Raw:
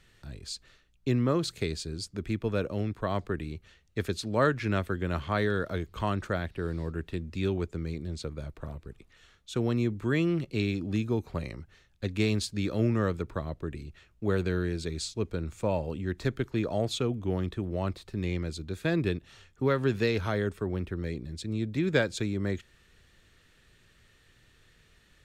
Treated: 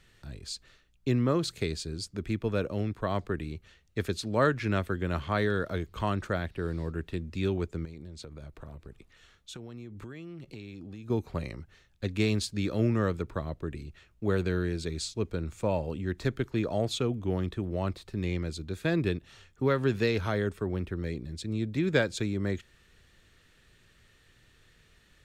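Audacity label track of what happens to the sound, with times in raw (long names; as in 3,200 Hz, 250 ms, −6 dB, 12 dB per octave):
7.850000	11.100000	downward compressor 12 to 1, threshold −39 dBFS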